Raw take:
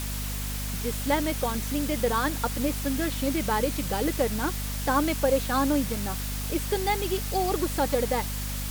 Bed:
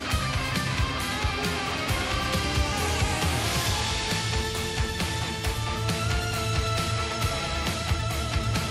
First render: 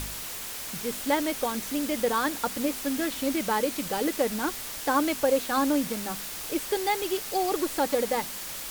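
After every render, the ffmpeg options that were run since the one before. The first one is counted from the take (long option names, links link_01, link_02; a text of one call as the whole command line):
ffmpeg -i in.wav -af "bandreject=frequency=50:width_type=h:width=4,bandreject=frequency=100:width_type=h:width=4,bandreject=frequency=150:width_type=h:width=4,bandreject=frequency=200:width_type=h:width=4,bandreject=frequency=250:width_type=h:width=4" out.wav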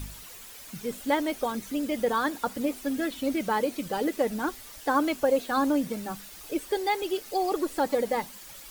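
ffmpeg -i in.wav -af "afftdn=noise_reduction=11:noise_floor=-37" out.wav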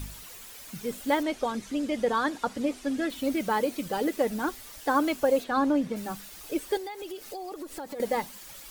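ffmpeg -i in.wav -filter_complex "[0:a]asettb=1/sr,asplit=3[link_01][link_02][link_03];[link_01]atrim=end=1.234[link_04];[link_02]atrim=start=1.23:end=3.1,asetpts=PTS-STARTPTS,afade=type=in:duration=0.004:curve=qsin,afade=type=out:start_time=1.866:duration=0.004:curve=qsin,lowpass=7900[link_05];[link_03]atrim=start=3.096[link_06];[link_04][link_05]acrossfade=duration=0.004:curve1=hsin:curve2=qsin[link_07];[link_07][link_06]acrossfade=duration=0.004:curve1=qsin:curve2=hsin,asplit=3[link_08][link_09][link_10];[link_08]afade=type=out:start_time=5.43:duration=0.02[link_11];[link_09]aemphasis=mode=reproduction:type=50fm,afade=type=in:start_time=5.43:duration=0.02,afade=type=out:start_time=5.95:duration=0.02[link_12];[link_10]afade=type=in:start_time=5.95:duration=0.02[link_13];[link_11][link_12][link_13]amix=inputs=3:normalize=0,asettb=1/sr,asplit=3[link_14][link_15][link_16];[link_14]atrim=end=6.774[link_17];[link_15]atrim=start=6.77:end=8,asetpts=PTS-STARTPTS,afade=type=in:duration=0.004:curve=qsin,afade=type=out:start_time=1.226:duration=0.004:curve=qsin,acompressor=threshold=-35dB:ratio=6:attack=3.2:release=140:knee=1:detection=peak[link_18];[link_16]atrim=start=7.996[link_19];[link_17][link_18]acrossfade=duration=0.004:curve1=hsin:curve2=qsin[link_20];[link_20][link_19]acrossfade=duration=0.004:curve1=qsin:curve2=hsin" out.wav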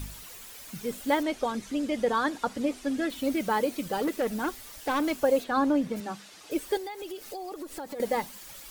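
ffmpeg -i in.wav -filter_complex "[0:a]asettb=1/sr,asplit=3[link_01][link_02][link_03];[link_01]atrim=end=3.964[link_04];[link_02]atrim=start=3.96:end=5.11,asetpts=PTS-STARTPTS,afade=type=in:duration=0.004:curve=qsin,afade=type=out:start_time=1.146:duration=0.004:curve=qsin,volume=23.5dB,asoftclip=hard,volume=-23.5dB[link_05];[link_03]atrim=start=5.106[link_06];[link_04][link_05]acrossfade=duration=0.004:curve1=hsin:curve2=qsin[link_07];[link_07][link_06]acrossfade=duration=0.004:curve1=qsin:curve2=hsin,asettb=1/sr,asplit=3[link_08][link_09][link_10];[link_08]atrim=end=6.004[link_11];[link_09]atrim=start=6:end=6.51,asetpts=PTS-STARTPTS,afade=type=in:duration=0.004:curve=qsin,afade=type=out:start_time=0.506:duration=0.004:curve=qsin,highpass=170,lowpass=6700[link_12];[link_10]atrim=start=6.506[link_13];[link_11][link_12]acrossfade=duration=0.004:curve1=hsin:curve2=qsin[link_14];[link_14][link_13]acrossfade=duration=0.004:curve1=qsin:curve2=hsin" out.wav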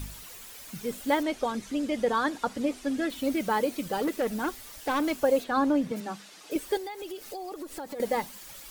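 ffmpeg -i in.wav -filter_complex "[0:a]asettb=1/sr,asplit=3[link_01][link_02][link_03];[link_01]atrim=end=5.914[link_04];[link_02]atrim=start=5.91:end=6.56,asetpts=PTS-STARTPTS,afade=type=in:duration=0.004:curve=qsin,afade=type=out:start_time=0.646:duration=0.004:curve=qsin,highpass=frequency=140:width=0.5412,highpass=frequency=140:width=1.3066[link_05];[link_03]atrim=start=6.556[link_06];[link_04][link_05]acrossfade=duration=0.004:curve1=hsin:curve2=qsin[link_07];[link_07][link_06]acrossfade=duration=0.004:curve1=qsin:curve2=hsin" out.wav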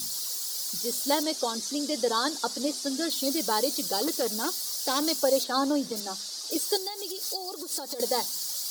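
ffmpeg -i in.wav -af "highpass=260,highshelf=frequency=3400:width_type=q:width=3:gain=11.5" out.wav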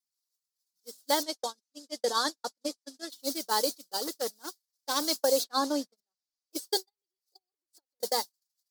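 ffmpeg -i in.wav -af "agate=range=-58dB:threshold=-26dB:ratio=16:detection=peak,highpass=frequency=360:poles=1" out.wav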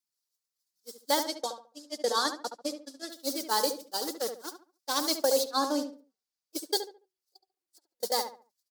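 ffmpeg -i in.wav -filter_complex "[0:a]asplit=2[link_01][link_02];[link_02]adelay=71,lowpass=frequency=1700:poles=1,volume=-7dB,asplit=2[link_03][link_04];[link_04]adelay=71,lowpass=frequency=1700:poles=1,volume=0.31,asplit=2[link_05][link_06];[link_06]adelay=71,lowpass=frequency=1700:poles=1,volume=0.31,asplit=2[link_07][link_08];[link_08]adelay=71,lowpass=frequency=1700:poles=1,volume=0.31[link_09];[link_01][link_03][link_05][link_07][link_09]amix=inputs=5:normalize=0" out.wav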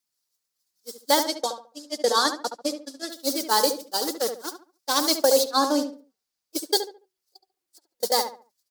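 ffmpeg -i in.wav -af "volume=6.5dB" out.wav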